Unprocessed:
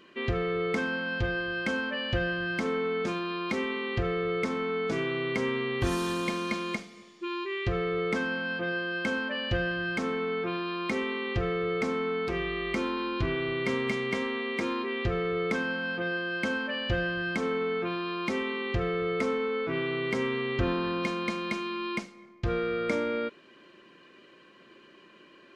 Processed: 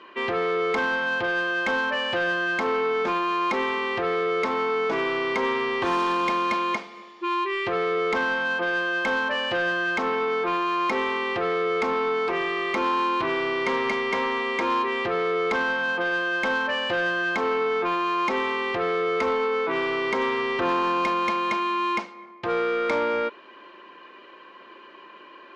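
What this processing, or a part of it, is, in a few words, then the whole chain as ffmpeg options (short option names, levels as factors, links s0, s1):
intercom: -af "highpass=360,lowpass=3600,equalizer=f=950:t=o:w=0.53:g=10,asoftclip=type=tanh:threshold=0.0562,volume=2.37"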